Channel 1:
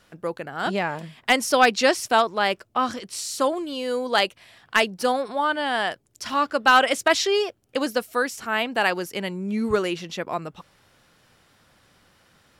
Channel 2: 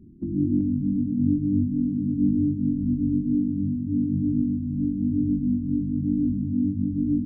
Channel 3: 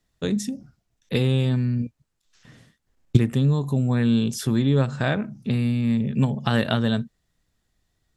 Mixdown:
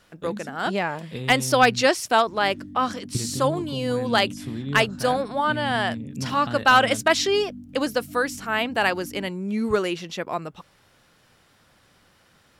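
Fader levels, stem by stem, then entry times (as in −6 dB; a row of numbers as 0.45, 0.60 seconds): 0.0, −16.5, −11.0 decibels; 0.00, 2.05, 0.00 seconds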